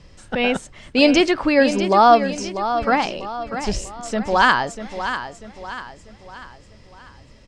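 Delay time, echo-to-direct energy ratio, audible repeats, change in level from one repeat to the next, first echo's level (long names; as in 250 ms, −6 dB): 643 ms, −9.0 dB, 4, −7.0 dB, −10.0 dB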